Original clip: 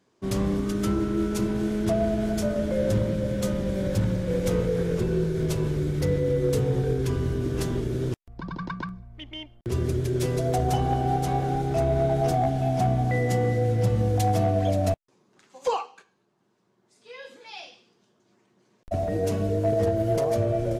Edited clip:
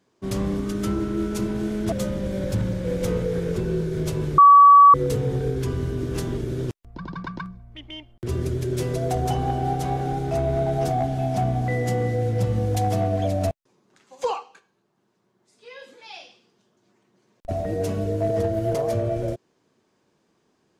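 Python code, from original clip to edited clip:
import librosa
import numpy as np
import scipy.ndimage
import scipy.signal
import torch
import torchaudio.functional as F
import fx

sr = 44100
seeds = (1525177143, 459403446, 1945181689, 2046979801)

y = fx.edit(x, sr, fx.cut(start_s=1.92, length_s=1.43),
    fx.bleep(start_s=5.81, length_s=0.56, hz=1140.0, db=-7.0), tone=tone)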